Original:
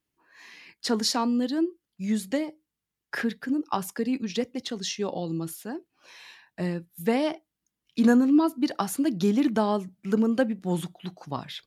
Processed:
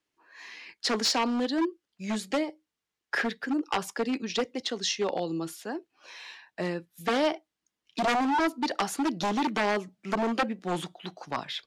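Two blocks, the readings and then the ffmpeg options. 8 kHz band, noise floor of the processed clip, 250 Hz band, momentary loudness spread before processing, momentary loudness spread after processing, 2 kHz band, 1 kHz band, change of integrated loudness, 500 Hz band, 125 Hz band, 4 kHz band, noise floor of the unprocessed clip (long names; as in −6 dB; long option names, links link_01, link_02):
0.0 dB, below −85 dBFS, −6.0 dB, 14 LU, 14 LU, +4.0 dB, +3.5 dB, −2.5 dB, −1.5 dB, −7.0 dB, +2.5 dB, below −85 dBFS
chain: -filter_complex "[0:a]aeval=exprs='0.0891*(abs(mod(val(0)/0.0891+3,4)-2)-1)':channel_layout=same,acrossover=split=310 7900:gain=0.251 1 0.2[link_01][link_02][link_03];[link_01][link_02][link_03]amix=inputs=3:normalize=0,volume=3.5dB"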